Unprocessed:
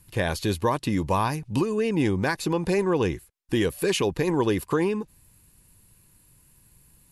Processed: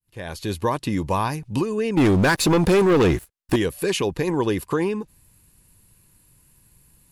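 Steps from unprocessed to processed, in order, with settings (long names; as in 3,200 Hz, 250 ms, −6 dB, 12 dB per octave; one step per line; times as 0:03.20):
fade in at the beginning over 0.66 s
0:01.97–0:03.56: leveller curve on the samples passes 3
level +1 dB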